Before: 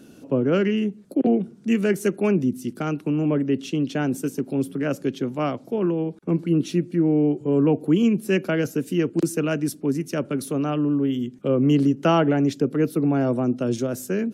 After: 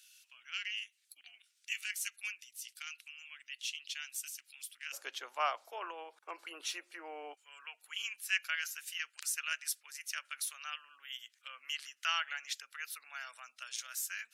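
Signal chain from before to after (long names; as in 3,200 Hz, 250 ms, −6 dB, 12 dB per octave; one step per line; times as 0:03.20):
inverse Chebyshev high-pass filter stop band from 510 Hz, stop band 70 dB, from 0:04.92 stop band from 190 Hz, from 0:07.33 stop band from 370 Hz
level −1 dB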